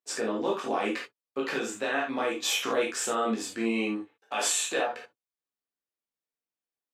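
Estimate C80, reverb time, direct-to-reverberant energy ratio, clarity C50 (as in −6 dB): 14.5 dB, non-exponential decay, −3.5 dB, 6.0 dB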